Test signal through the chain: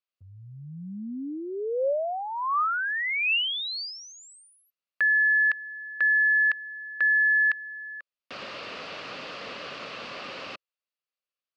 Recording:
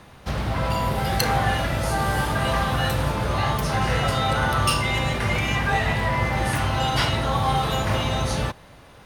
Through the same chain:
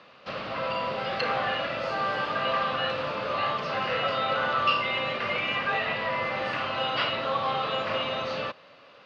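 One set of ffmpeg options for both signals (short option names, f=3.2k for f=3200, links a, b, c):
-filter_complex "[0:a]highpass=270,equalizer=f=350:t=q:w=4:g=-4,equalizer=f=550:t=q:w=4:g=7,equalizer=f=860:t=q:w=4:g=-5,equalizer=f=1.2k:t=q:w=4:g=7,equalizer=f=2.7k:t=q:w=4:g=8,equalizer=f=4.6k:t=q:w=4:g=6,lowpass=f=4.8k:w=0.5412,lowpass=f=4.8k:w=1.3066,acrossover=split=3800[a][b];[b]acompressor=threshold=-43dB:ratio=4:attack=1:release=60[c];[a][c]amix=inputs=2:normalize=0,volume=-5.5dB"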